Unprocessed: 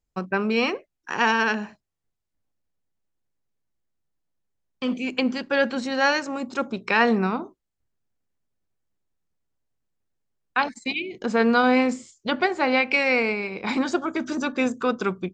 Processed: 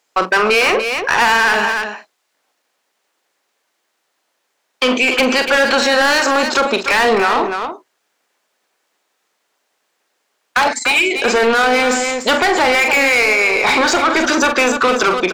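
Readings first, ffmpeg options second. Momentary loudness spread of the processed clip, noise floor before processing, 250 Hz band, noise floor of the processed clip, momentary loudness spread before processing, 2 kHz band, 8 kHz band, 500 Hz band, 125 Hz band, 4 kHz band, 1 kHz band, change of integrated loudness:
5 LU, -81 dBFS, +3.5 dB, -69 dBFS, 10 LU, +11.5 dB, +20.0 dB, +9.5 dB, n/a, +14.0 dB, +10.5 dB, +10.0 dB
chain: -filter_complex "[0:a]highpass=400,asplit=2[a][b];[b]highpass=f=720:p=1,volume=28dB,asoftclip=type=tanh:threshold=-5dB[c];[a][c]amix=inputs=2:normalize=0,lowpass=f=4.7k:p=1,volume=-6dB,asplit=2[d][e];[e]aecho=0:1:43.73|291.5:0.316|0.282[f];[d][f]amix=inputs=2:normalize=0,alimiter=limit=-12dB:level=0:latency=1:release=24,volume=4.5dB"

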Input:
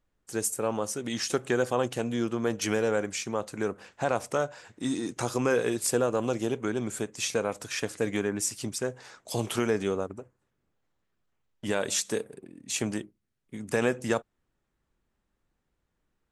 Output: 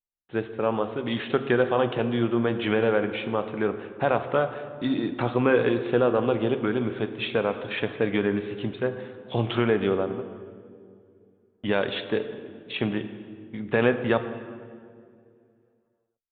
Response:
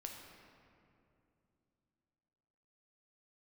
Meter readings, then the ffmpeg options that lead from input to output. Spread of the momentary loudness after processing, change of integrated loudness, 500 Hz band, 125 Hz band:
13 LU, +4.0 dB, +4.5 dB, +5.5 dB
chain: -filter_complex "[0:a]agate=range=-33dB:threshold=-41dB:ratio=3:detection=peak,asplit=2[a][b];[1:a]atrim=start_sample=2205,asetrate=57330,aresample=44100[c];[b][c]afir=irnorm=-1:irlink=0,volume=3.5dB[d];[a][d]amix=inputs=2:normalize=0,aresample=8000,aresample=44100"

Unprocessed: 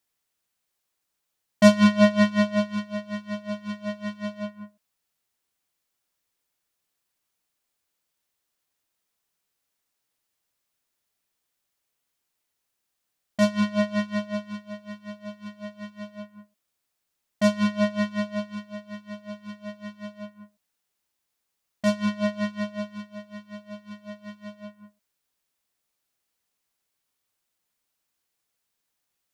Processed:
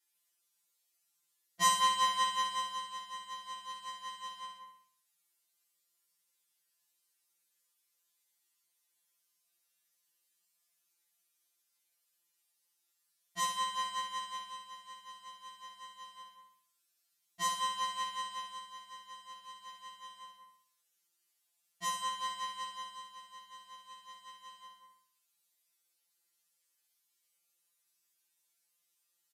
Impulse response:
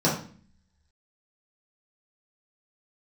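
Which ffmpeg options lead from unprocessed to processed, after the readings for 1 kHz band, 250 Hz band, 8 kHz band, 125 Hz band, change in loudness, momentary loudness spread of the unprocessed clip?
+2.0 dB, -38.0 dB, +4.0 dB, under -30 dB, -10.5 dB, 22 LU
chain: -af "aeval=exprs='if(lt(val(0),0),0.708*val(0),val(0))':c=same,highshelf=f=6.7k:g=8,aecho=1:1:61|122|183|244|305|366:0.562|0.281|0.141|0.0703|0.0351|0.0176,aresample=32000,aresample=44100,aemphasis=mode=reproduction:type=75kf,crystalizer=i=9.5:c=0,highpass=170,afftfilt=real='re*2.83*eq(mod(b,8),0)':imag='im*2.83*eq(mod(b,8),0)':win_size=2048:overlap=0.75,volume=-8dB"

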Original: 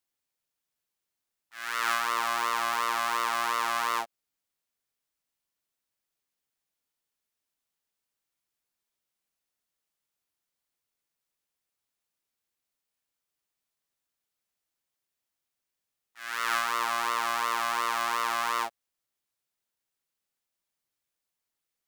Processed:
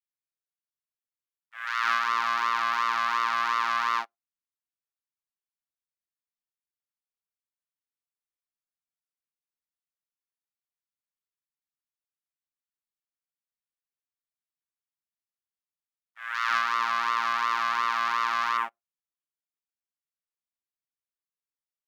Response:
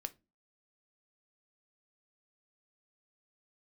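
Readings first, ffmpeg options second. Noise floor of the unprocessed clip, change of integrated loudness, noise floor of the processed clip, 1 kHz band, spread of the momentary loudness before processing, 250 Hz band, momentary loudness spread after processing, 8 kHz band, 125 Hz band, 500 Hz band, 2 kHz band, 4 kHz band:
under -85 dBFS, +2.0 dB, under -85 dBFS, +2.5 dB, 6 LU, -3.5 dB, 6 LU, -8.5 dB, n/a, -7.5 dB, +2.5 dB, -0.5 dB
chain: -filter_complex "[0:a]firequalizer=gain_entry='entry(180,0);entry(470,-13);entry(1100,2);entry(3300,-2)':delay=0.05:min_phase=1,afwtdn=0.00631,asplit=2[a][b];[1:a]atrim=start_sample=2205,asetrate=88200,aresample=44100[c];[b][c]afir=irnorm=-1:irlink=0,volume=-4dB[d];[a][d]amix=inputs=2:normalize=0"

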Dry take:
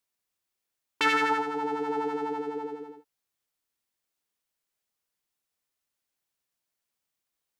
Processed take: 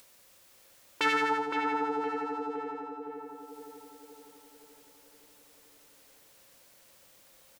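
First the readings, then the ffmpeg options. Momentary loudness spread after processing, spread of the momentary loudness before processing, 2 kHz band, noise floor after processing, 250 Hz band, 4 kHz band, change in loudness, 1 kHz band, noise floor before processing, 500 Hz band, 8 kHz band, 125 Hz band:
20 LU, 15 LU, -2.5 dB, -60 dBFS, -2.0 dB, -2.5 dB, -3.0 dB, -1.5 dB, -85 dBFS, -2.5 dB, -1.0 dB, -4.5 dB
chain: -filter_complex "[0:a]equalizer=f=540:w=7.6:g=11.5,acompressor=mode=upward:threshold=-34dB:ratio=2.5,asplit=2[a][b];[b]adelay=515,lowpass=f=1.6k:p=1,volume=-3.5dB,asplit=2[c][d];[d]adelay=515,lowpass=f=1.6k:p=1,volume=0.54,asplit=2[e][f];[f]adelay=515,lowpass=f=1.6k:p=1,volume=0.54,asplit=2[g][h];[h]adelay=515,lowpass=f=1.6k:p=1,volume=0.54,asplit=2[i][j];[j]adelay=515,lowpass=f=1.6k:p=1,volume=0.54,asplit=2[k][l];[l]adelay=515,lowpass=f=1.6k:p=1,volume=0.54,asplit=2[m][n];[n]adelay=515,lowpass=f=1.6k:p=1,volume=0.54[o];[c][e][g][i][k][m][o]amix=inputs=7:normalize=0[p];[a][p]amix=inputs=2:normalize=0,volume=-3dB"

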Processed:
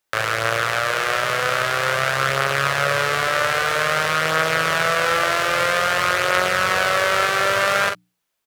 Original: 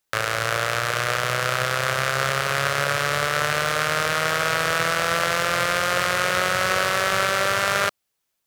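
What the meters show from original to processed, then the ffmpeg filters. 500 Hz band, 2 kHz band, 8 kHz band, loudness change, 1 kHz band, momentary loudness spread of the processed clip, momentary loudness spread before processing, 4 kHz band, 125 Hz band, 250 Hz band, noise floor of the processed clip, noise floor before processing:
+3.0 dB, +3.0 dB, -0.5 dB, +2.5 dB, +3.0 dB, 3 LU, 2 LU, +1.5 dB, -0.5 dB, +1.0 dB, -76 dBFS, -77 dBFS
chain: -filter_complex "[0:a]bass=f=250:g=-3,treble=f=4k:g=-4,bandreject=f=60:t=h:w=6,bandreject=f=120:t=h:w=6,bandreject=f=180:t=h:w=6,bandreject=f=240:t=h:w=6,bandreject=f=300:t=h:w=6,asplit=2[a][b];[b]aecho=0:1:44|56:0.531|0.168[c];[a][c]amix=inputs=2:normalize=0,volume=2dB"

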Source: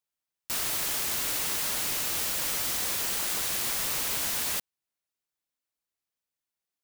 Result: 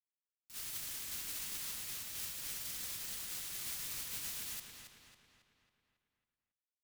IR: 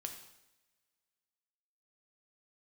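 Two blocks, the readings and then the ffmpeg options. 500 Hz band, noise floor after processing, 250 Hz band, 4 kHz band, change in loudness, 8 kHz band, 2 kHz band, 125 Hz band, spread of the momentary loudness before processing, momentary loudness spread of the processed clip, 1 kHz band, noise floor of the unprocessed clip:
-20.5 dB, under -85 dBFS, -15.5 dB, -12.5 dB, -13.0 dB, -12.0 dB, -15.0 dB, -12.0 dB, 1 LU, 6 LU, -19.0 dB, under -85 dBFS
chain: -filter_complex "[0:a]agate=range=-30dB:threshold=-26dB:ratio=16:detection=peak,equalizer=f=650:t=o:w=2.5:g=-11,asplit=2[a][b];[b]adelay=274,lowpass=f=4.6k:p=1,volume=-5dB,asplit=2[c][d];[d]adelay=274,lowpass=f=4.6k:p=1,volume=0.54,asplit=2[e][f];[f]adelay=274,lowpass=f=4.6k:p=1,volume=0.54,asplit=2[g][h];[h]adelay=274,lowpass=f=4.6k:p=1,volume=0.54,asplit=2[i][j];[j]adelay=274,lowpass=f=4.6k:p=1,volume=0.54,asplit=2[k][l];[l]adelay=274,lowpass=f=4.6k:p=1,volume=0.54,asplit=2[m][n];[n]adelay=274,lowpass=f=4.6k:p=1,volume=0.54[o];[a][c][e][g][i][k][m][o]amix=inputs=8:normalize=0,asplit=2[p][q];[1:a]atrim=start_sample=2205,asetrate=31752,aresample=44100[r];[q][r]afir=irnorm=-1:irlink=0,volume=-5.5dB[s];[p][s]amix=inputs=2:normalize=0,volume=4dB"

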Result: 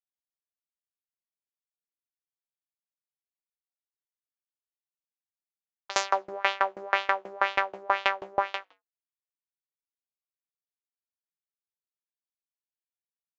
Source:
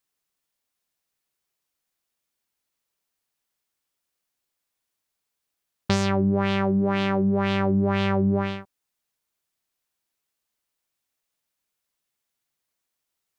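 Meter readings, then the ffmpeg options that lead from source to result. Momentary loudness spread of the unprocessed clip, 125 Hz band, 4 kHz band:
4 LU, under -35 dB, -1.0 dB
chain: -filter_complex "[0:a]highpass=f=620:w=0.5412,highpass=f=620:w=1.3066,anlmdn=0.00631,asplit=2[a][b];[b]acompressor=threshold=-41dB:ratio=16,volume=1dB[c];[a][c]amix=inputs=2:normalize=0,acrusher=bits=10:mix=0:aa=0.000001,asplit=3[d][e][f];[e]adelay=91,afreqshift=-56,volume=-24dB[g];[f]adelay=182,afreqshift=-112,volume=-32.2dB[h];[d][g][h]amix=inputs=3:normalize=0,aresample=16000,aresample=44100,aeval=exprs='val(0)*pow(10,-29*if(lt(mod(6.2*n/s,1),2*abs(6.2)/1000),1-mod(6.2*n/s,1)/(2*abs(6.2)/1000),(mod(6.2*n/s,1)-2*abs(6.2)/1000)/(1-2*abs(6.2)/1000))/20)':c=same,volume=9dB"

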